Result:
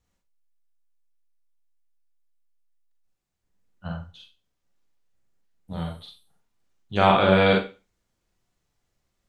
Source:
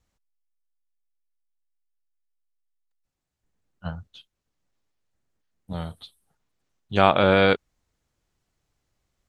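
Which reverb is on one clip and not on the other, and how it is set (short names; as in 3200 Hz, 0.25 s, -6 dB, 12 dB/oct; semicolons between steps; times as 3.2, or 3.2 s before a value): Schroeder reverb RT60 0.31 s, combs from 32 ms, DRR -0.5 dB; gain -3 dB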